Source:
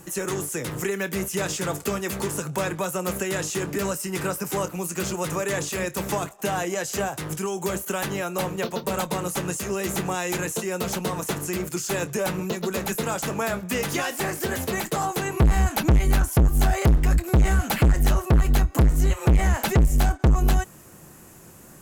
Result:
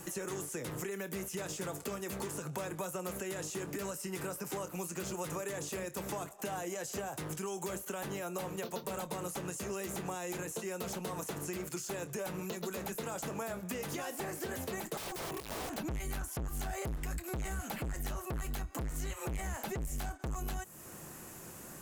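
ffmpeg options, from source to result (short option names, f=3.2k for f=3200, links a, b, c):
-filter_complex "[0:a]asettb=1/sr,asplit=3[a][b][c];[a]atrim=end=14.974[d];[b]atrim=start=14.97:end=15.78,asetpts=PTS-STARTPTS,afade=t=in:d=0.004:c=qsin,afade=t=out:st=0.806:d=0.004:c=qsin,aeval=exprs='(mod(18.8*val(0)+1,2)-1)/18.8':c=same[e];[c]atrim=start=15.776[f];[d][e]acrossfade=d=0.004:c1=hsin:c2=qsin[g];[g][f]acrossfade=d=0.004:c1=qsin:c2=hsin,lowshelf=f=260:g=-5,alimiter=limit=-19.5dB:level=0:latency=1:release=70,acrossover=split=920|7300[h][i][j];[h]acompressor=threshold=-39dB:ratio=4[k];[i]acompressor=threshold=-48dB:ratio=4[l];[j]acompressor=threshold=-48dB:ratio=4[m];[k][l][m]amix=inputs=3:normalize=0"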